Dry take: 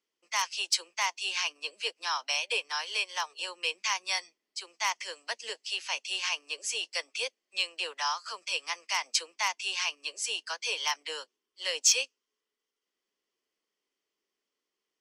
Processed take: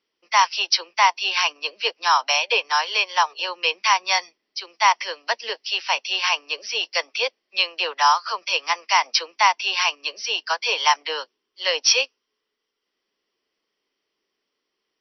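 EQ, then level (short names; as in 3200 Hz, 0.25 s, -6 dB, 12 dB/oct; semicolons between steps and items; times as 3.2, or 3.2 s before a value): dynamic EQ 880 Hz, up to +8 dB, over -47 dBFS, Q 0.92; brick-wall FIR low-pass 6000 Hz; +8.5 dB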